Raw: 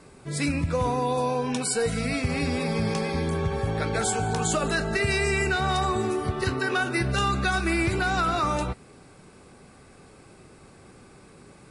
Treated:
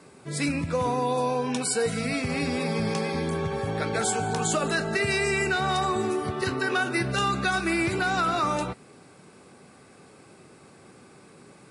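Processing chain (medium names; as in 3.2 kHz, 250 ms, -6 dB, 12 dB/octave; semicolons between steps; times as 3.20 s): high-pass 130 Hz 12 dB/octave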